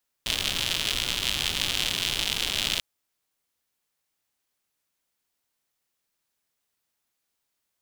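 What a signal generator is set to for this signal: rain from filtered ticks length 2.54 s, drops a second 140, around 3200 Hz, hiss -8 dB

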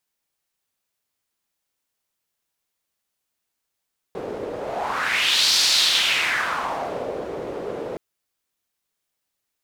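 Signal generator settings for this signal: whoosh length 3.82 s, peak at 1.43, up 1.12 s, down 1.75 s, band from 460 Hz, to 4500 Hz, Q 2.9, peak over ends 12.5 dB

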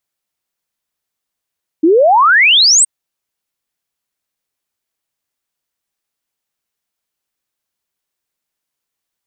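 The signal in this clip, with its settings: log sweep 300 Hz -> 8700 Hz 1.02 s -5.5 dBFS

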